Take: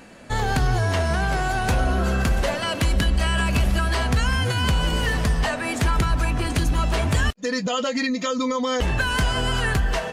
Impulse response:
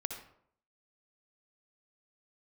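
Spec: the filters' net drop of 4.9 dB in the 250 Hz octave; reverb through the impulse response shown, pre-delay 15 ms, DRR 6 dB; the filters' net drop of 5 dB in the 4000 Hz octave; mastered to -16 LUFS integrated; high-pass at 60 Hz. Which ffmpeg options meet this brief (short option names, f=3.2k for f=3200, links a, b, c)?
-filter_complex "[0:a]highpass=60,equalizer=f=250:t=o:g=-6.5,equalizer=f=4k:t=o:g=-7.5,asplit=2[a][b];[1:a]atrim=start_sample=2205,adelay=15[c];[b][c]afir=irnorm=-1:irlink=0,volume=-6.5dB[d];[a][d]amix=inputs=2:normalize=0,volume=7.5dB"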